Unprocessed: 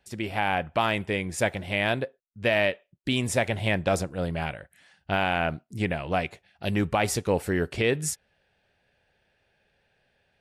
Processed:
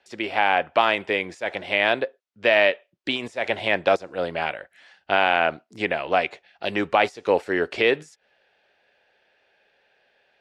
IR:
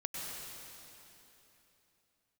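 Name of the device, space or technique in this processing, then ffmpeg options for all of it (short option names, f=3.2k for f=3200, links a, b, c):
de-esser from a sidechain: -filter_complex "[0:a]asplit=2[a][b];[b]highpass=f=6.8k:w=0.5412,highpass=f=6.8k:w=1.3066,apad=whole_len=458884[c];[a][c]sidechaincompress=threshold=-45dB:ratio=10:attack=0.76:release=98,acrossover=split=300 6300:gain=0.0891 1 0.0794[d][e][f];[d][e][f]amix=inputs=3:normalize=0,volume=6.5dB"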